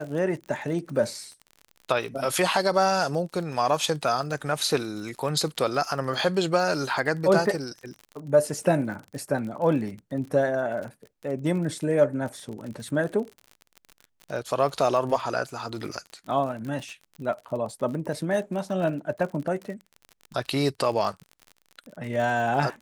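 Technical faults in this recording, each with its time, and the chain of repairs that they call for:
crackle 45 per s -34 dBFS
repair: de-click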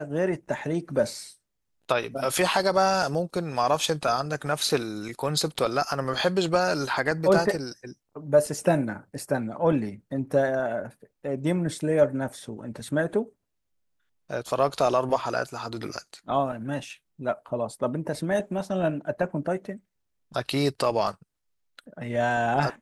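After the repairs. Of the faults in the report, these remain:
nothing left

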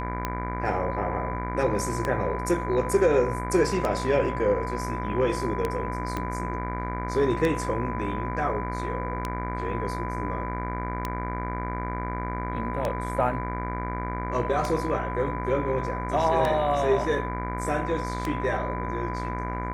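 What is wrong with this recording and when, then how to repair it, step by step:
buzz 60 Hz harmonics 39 -32 dBFS
tick 33 1/3 rpm -13 dBFS
whine 1 kHz -33 dBFS
6.17 s: pop -16 dBFS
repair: de-click; band-stop 1 kHz, Q 30; de-hum 60 Hz, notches 39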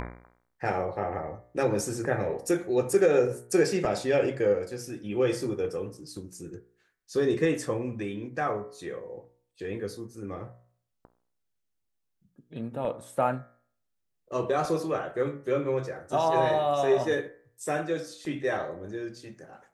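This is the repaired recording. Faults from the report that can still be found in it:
6.17 s: pop

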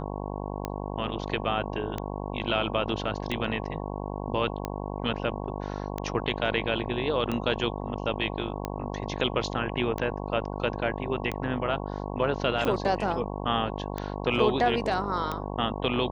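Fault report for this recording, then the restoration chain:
buzz 50 Hz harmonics 22 -34 dBFS
tick 45 rpm -16 dBFS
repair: de-click; de-hum 50 Hz, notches 22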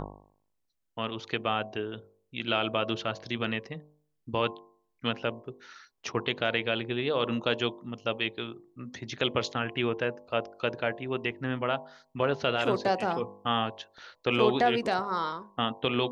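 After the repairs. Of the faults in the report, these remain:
nothing left

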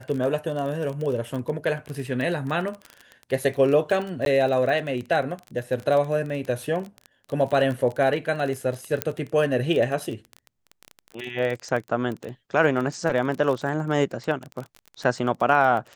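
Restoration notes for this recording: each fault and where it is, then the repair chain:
crackle 25 per s -28 dBFS
4.25–4.26 s: dropout 12 ms
9.02 s: pop -6 dBFS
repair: de-click; interpolate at 4.25 s, 12 ms

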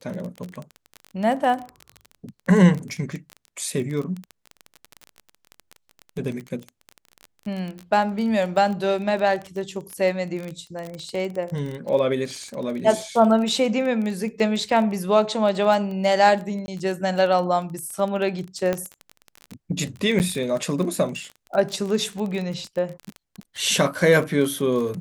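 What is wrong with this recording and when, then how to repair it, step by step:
crackle 23 per s -27 dBFS
16.66–16.68 s: dropout 20 ms
18.73 s: pop -11 dBFS
20.19–20.20 s: dropout 9.2 ms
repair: de-click; interpolate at 16.66 s, 20 ms; interpolate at 20.19 s, 9.2 ms

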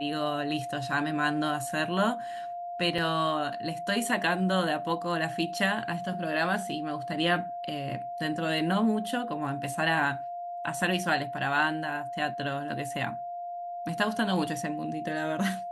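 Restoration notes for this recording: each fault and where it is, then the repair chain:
whine 700 Hz -34 dBFS
2.98 s: dropout 4.4 ms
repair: band-stop 700 Hz, Q 30; interpolate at 2.98 s, 4.4 ms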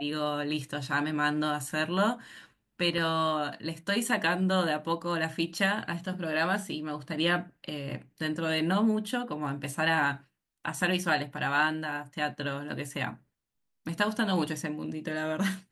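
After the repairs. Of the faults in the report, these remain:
nothing left

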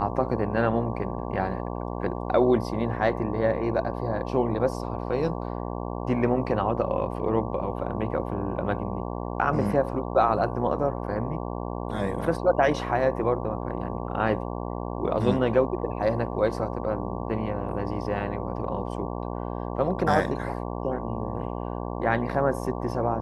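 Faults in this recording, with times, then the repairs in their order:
buzz 60 Hz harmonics 19 -32 dBFS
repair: de-hum 60 Hz, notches 19

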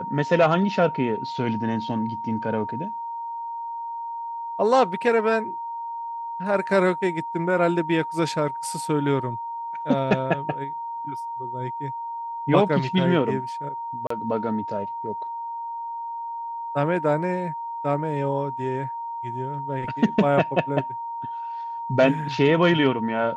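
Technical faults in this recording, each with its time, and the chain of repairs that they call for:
whine 930 Hz -29 dBFS
14.07–14.10 s: dropout 34 ms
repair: band-stop 930 Hz, Q 30; interpolate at 14.07 s, 34 ms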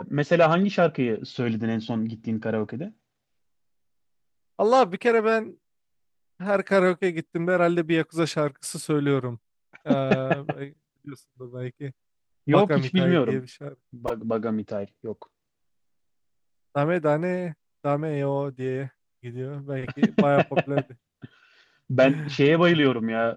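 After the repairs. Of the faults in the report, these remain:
nothing left

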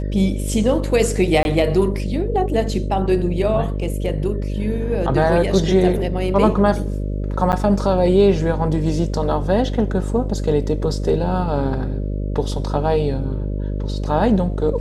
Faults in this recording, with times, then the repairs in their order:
buzz 50 Hz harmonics 12 -23 dBFS
1.43–1.45 s: dropout 21 ms
7.52–7.53 s: dropout 9.5 ms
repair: de-hum 50 Hz, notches 12; interpolate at 1.43 s, 21 ms; interpolate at 7.52 s, 9.5 ms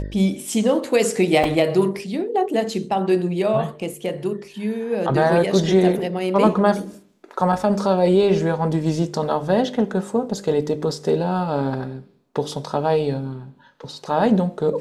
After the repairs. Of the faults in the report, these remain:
nothing left

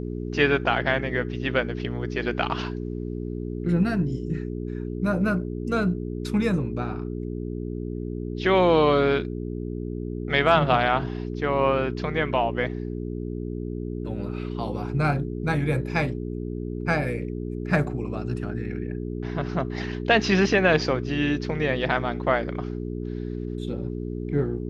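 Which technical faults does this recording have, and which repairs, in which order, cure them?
hum 60 Hz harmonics 7 -31 dBFS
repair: de-hum 60 Hz, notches 7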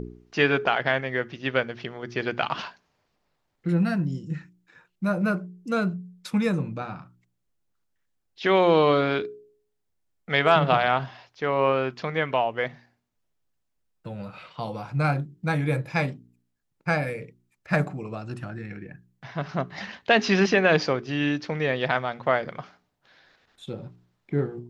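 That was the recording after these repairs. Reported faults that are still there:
nothing left

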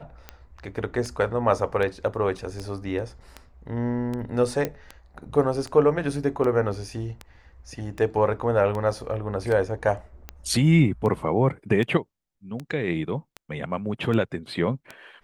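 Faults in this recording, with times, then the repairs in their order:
tick 78 rpm -19 dBFS
4.65 s: pop -13 dBFS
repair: de-click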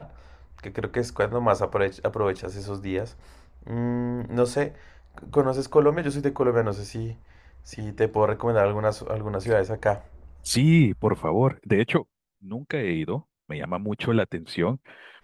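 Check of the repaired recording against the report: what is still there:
nothing left

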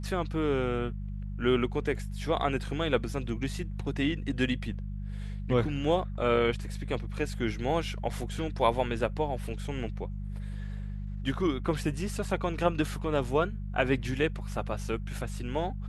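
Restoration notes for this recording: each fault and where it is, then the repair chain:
hum 50 Hz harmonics 4 -36 dBFS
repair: de-hum 50 Hz, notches 4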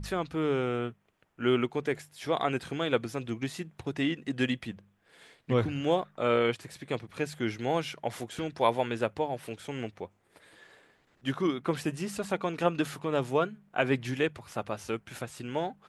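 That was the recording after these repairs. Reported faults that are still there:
nothing left

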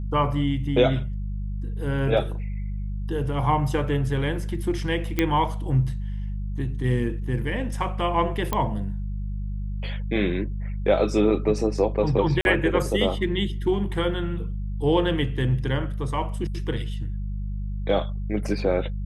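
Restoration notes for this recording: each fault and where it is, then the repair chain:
hum 50 Hz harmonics 4 -29 dBFS
5.19 s: pop -8 dBFS
8.53 s: pop -10 dBFS
12.41–12.45 s: dropout 41 ms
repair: de-click; de-hum 50 Hz, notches 4; interpolate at 12.41 s, 41 ms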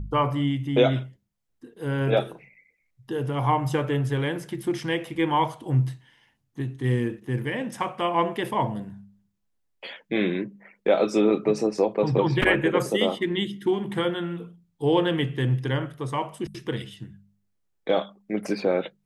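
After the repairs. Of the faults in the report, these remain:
8.53 s: pop

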